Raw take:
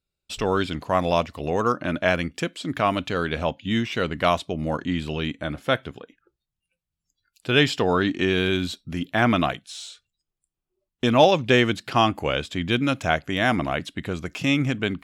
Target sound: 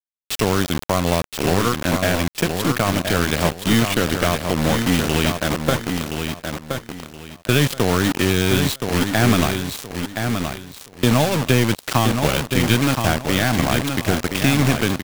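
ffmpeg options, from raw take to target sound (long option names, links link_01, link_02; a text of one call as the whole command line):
ffmpeg -i in.wav -filter_complex "[0:a]acrossover=split=190[link_01][link_02];[link_02]acompressor=threshold=-26dB:ratio=10[link_03];[link_01][link_03]amix=inputs=2:normalize=0,acrusher=bits=4:mix=0:aa=0.000001,aeval=exprs='0.335*(cos(1*acos(clip(val(0)/0.335,-1,1)))-cos(1*PI/2))+0.0335*(cos(4*acos(clip(val(0)/0.335,-1,1)))-cos(4*PI/2))':channel_layout=same,asplit=2[link_04][link_05];[link_05]aecho=0:1:1022|2044|3066:0.501|0.13|0.0339[link_06];[link_04][link_06]amix=inputs=2:normalize=0,volume=8dB" out.wav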